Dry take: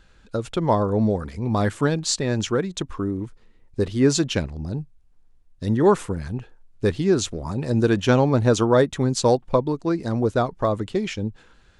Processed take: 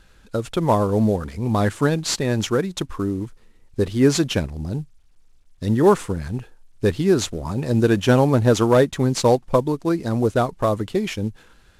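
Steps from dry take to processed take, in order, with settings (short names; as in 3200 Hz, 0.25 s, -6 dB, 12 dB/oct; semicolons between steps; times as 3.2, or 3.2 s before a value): CVSD 64 kbps; gain +2 dB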